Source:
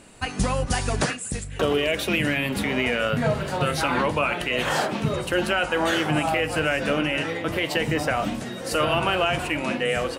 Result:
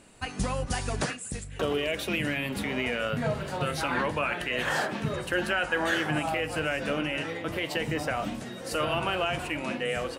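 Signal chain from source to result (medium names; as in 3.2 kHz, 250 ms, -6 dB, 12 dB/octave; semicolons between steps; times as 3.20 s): 3.91–6.18 s: peaking EQ 1.7 kHz +8 dB 0.29 oct; trim -6 dB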